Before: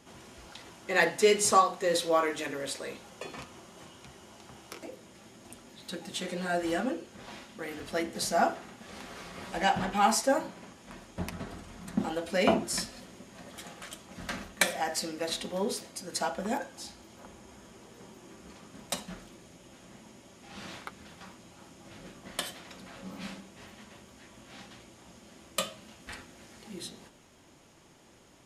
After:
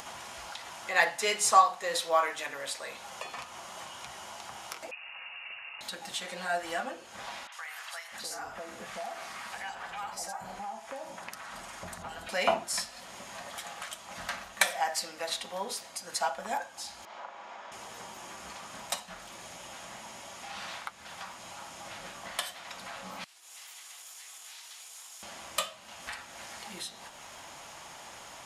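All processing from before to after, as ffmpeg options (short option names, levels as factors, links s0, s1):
-filter_complex "[0:a]asettb=1/sr,asplit=3[s0][s1][s2];[s0]atrim=end=4.914[s3];[s1]atrim=start=4.91:end=5.81,asetpts=PTS-STARTPTS,afade=t=in:d=0.004:c=qsin,afade=t=out:st=0.896:d=0.004:c=qsin,highpass=75,lowpass=f=2600:t=q:w=0.5098,lowpass=f=2600:t=q:w=0.6013,lowpass=f=2600:t=q:w=0.9,lowpass=f=2600:t=q:w=2.563,afreqshift=-3000[s4];[s2]atrim=start=5.806[s5];[s3][s4]acrossfade=d=0.004:c1=hsin:c2=qsin[s6];[s6][s5]acrossfade=d=0.004:c1=qsin:c2=hsin,asettb=1/sr,asplit=3[s7][s8][s9];[s7]atrim=end=7.474[s10];[s8]atrim=start=7.47:end=12.29,asetpts=PTS-STARTPTS,afade=t=in:d=0.004:c=qsin,afade=t=out:st=4.816:d=0.004:c=qsin,acompressor=threshold=0.0141:ratio=3:attack=3.2:release=140:knee=1:detection=peak,acrossover=split=840|3600[s11][s12][s13];[s13]adelay=50[s14];[s11]adelay=650[s15];[s15][s12][s14]amix=inputs=3:normalize=0,atrim=end_sample=212562[s16];[s9]atrim=start=12.286[s17];[s10][s16]acrossfade=d=0.004:c1=hsin:c2=qsin[s18];[s18][s17]acrossfade=d=0.004:c1=qsin:c2=hsin,asettb=1/sr,asplit=3[s19][s20][s21];[s19]atrim=end=17.054[s22];[s20]atrim=start=17.05:end=17.72,asetpts=PTS-STARTPTS,afade=t=in:d=0.004:c=qsin,afade=t=out:st=0.666:d=0.004:c=qsin,highpass=630,lowpass=5100,aemphasis=mode=reproduction:type=riaa,asplit=2[s23][s24];[s24]adelay=38,volume=0.631[s25];[s23][s25]amix=inputs=2:normalize=0,atrim=end_sample=29547[s26];[s21]atrim=start=17.716[s27];[s22][s26]acrossfade=d=0.004:c1=hsin:c2=qsin[s28];[s28][s27]acrossfade=d=0.004:c1=qsin:c2=hsin,asettb=1/sr,asplit=3[s29][s30][s31];[s29]atrim=end=23.244[s32];[s30]atrim=start=23.24:end=25.23,asetpts=PTS-STARTPTS,afade=t=in:d=0.004:c=qsin,afade=t=out:st=1.986:d=0.004:c=qsin,acompressor=threshold=0.00316:ratio=8:attack=3.2:release=140:knee=1:detection=peak,afreqshift=140,aderivative[s33];[s31]atrim=start=25.226[s34];[s32][s33]acrossfade=d=0.004:c1=hsin:c2=qsin[s35];[s35][s34]acrossfade=d=0.004:c1=qsin:c2=hsin,lowshelf=f=530:t=q:w=1.5:g=-12,acompressor=mode=upward:threshold=0.02:ratio=2.5"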